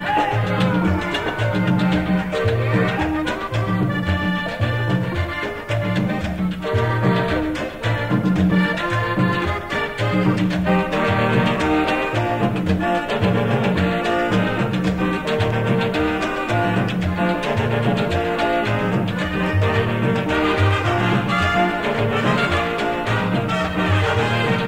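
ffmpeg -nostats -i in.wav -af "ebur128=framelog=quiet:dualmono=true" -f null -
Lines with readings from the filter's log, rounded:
Integrated loudness:
  I:         -16.7 LUFS
  Threshold: -26.7 LUFS
Loudness range:
  LRA:         2.5 LU
  Threshold: -36.7 LUFS
  LRA low:   -18.2 LUFS
  LRA high:  -15.8 LUFS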